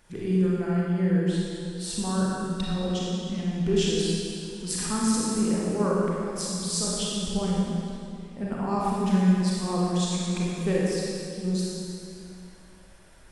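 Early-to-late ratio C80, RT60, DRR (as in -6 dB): -1.0 dB, 2.7 s, -5.5 dB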